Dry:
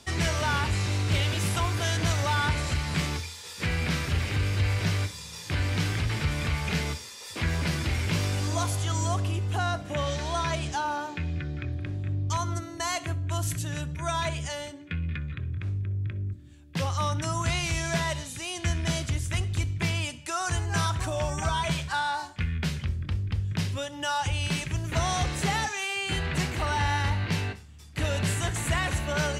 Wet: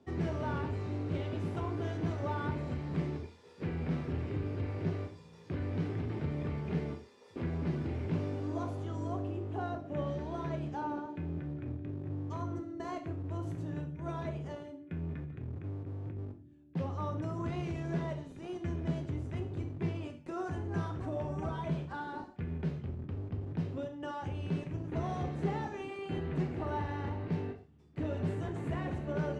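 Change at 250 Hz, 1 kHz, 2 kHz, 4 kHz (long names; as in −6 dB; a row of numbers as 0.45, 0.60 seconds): −2.0, −11.0, −17.0, −23.0 decibels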